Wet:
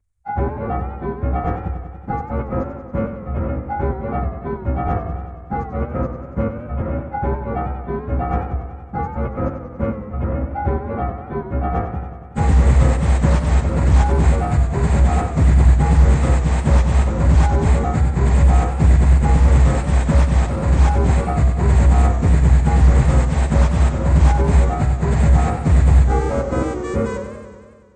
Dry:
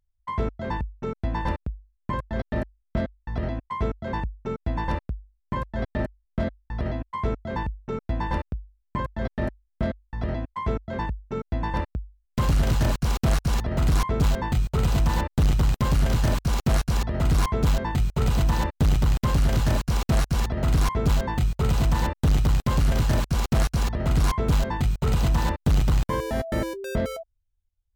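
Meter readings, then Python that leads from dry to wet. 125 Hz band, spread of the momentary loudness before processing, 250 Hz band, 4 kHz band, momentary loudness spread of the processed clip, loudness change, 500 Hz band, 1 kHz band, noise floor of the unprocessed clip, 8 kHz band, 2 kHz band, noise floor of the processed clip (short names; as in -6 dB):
+8.5 dB, 9 LU, +6.5 dB, -3.0 dB, 11 LU, +8.0 dB, +7.0 dB, +7.0 dB, -74 dBFS, +2.0 dB, +4.0 dB, -35 dBFS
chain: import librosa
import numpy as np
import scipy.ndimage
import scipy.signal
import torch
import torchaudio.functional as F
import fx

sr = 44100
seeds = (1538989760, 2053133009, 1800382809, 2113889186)

y = fx.partial_stretch(x, sr, pct=83)
y = fx.band_shelf(y, sr, hz=3800.0, db=-9.0, octaves=1.3)
y = fx.echo_warbled(y, sr, ms=94, feedback_pct=70, rate_hz=2.8, cents=104, wet_db=-9.0)
y = y * librosa.db_to_amplitude(7.5)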